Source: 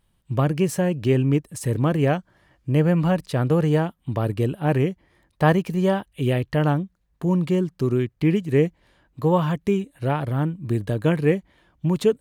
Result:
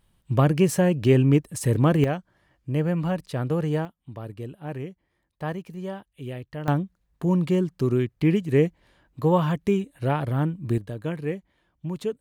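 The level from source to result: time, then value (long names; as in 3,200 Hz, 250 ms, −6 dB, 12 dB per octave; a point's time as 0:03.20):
+1.5 dB
from 0:02.04 −5.5 dB
from 0:03.85 −13 dB
from 0:06.68 −1 dB
from 0:10.78 −9.5 dB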